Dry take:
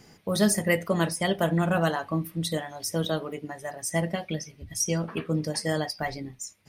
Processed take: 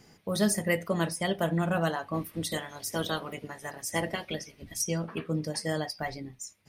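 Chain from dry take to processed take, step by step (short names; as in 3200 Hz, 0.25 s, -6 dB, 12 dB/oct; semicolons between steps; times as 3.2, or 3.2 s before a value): 2.13–4.81 spectral limiter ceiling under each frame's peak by 14 dB; gain -3.5 dB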